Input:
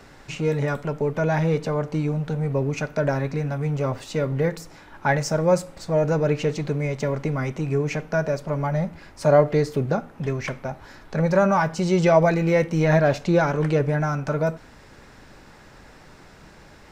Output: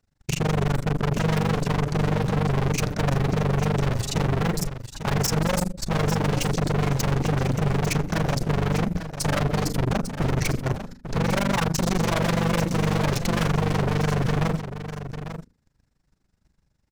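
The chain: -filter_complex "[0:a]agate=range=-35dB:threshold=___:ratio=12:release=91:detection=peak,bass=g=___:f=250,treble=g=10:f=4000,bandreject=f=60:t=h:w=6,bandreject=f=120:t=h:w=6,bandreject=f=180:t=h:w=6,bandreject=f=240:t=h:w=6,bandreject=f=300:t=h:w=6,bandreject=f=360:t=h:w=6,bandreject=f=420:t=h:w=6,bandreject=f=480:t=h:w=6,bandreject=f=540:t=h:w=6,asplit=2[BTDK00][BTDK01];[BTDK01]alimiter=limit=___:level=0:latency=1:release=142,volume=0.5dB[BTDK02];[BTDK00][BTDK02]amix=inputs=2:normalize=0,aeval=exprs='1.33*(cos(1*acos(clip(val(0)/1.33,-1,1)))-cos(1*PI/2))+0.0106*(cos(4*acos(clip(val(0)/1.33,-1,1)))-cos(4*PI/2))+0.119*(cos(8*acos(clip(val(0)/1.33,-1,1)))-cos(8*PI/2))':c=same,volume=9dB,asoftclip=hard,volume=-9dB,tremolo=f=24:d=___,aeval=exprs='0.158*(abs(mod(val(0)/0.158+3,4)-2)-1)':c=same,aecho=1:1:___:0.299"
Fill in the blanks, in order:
-42dB, 15, -9dB, 1, 848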